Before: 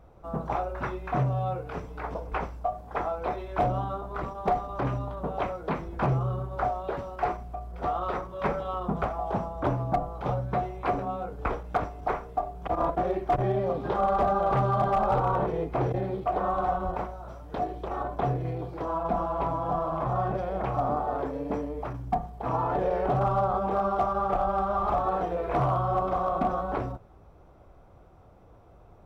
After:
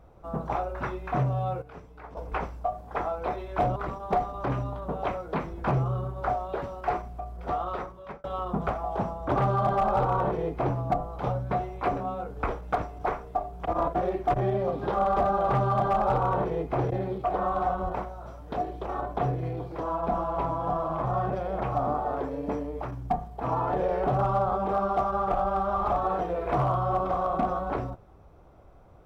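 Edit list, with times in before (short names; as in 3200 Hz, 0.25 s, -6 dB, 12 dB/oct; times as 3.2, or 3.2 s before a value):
1.62–2.17 gain -9.5 dB
3.76–4.11 cut
7.7–8.59 fade out equal-power
14.51–15.84 copy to 9.71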